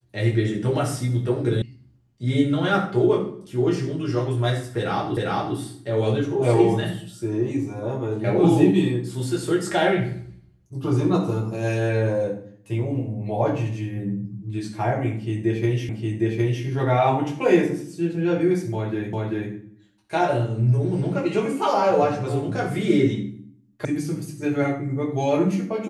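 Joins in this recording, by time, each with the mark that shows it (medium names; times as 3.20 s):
1.62 s: sound stops dead
5.17 s: repeat of the last 0.4 s
15.89 s: repeat of the last 0.76 s
19.13 s: repeat of the last 0.39 s
23.85 s: sound stops dead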